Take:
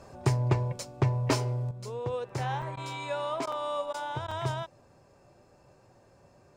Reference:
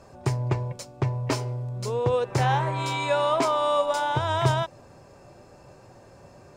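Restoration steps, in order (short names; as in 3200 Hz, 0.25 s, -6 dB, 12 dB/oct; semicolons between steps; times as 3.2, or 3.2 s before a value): clip repair -14 dBFS; interpolate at 2.29/2.62/3.52/3.93/4.31, 4 ms; interpolate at 2.76/3.46/3.93/4.27, 10 ms; gain correction +9.5 dB, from 1.71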